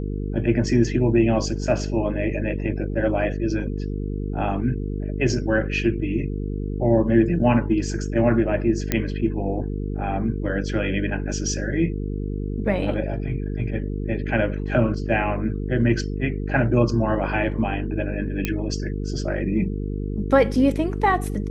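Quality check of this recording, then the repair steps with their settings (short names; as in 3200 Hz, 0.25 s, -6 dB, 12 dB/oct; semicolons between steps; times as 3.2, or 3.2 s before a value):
buzz 50 Hz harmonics 9 -27 dBFS
8.92 pop -6 dBFS
18.45 pop -9 dBFS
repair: de-click; de-hum 50 Hz, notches 9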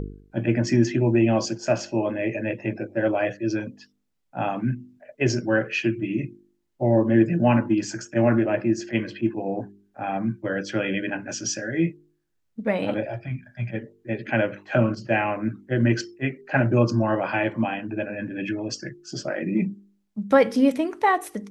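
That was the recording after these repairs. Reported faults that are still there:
none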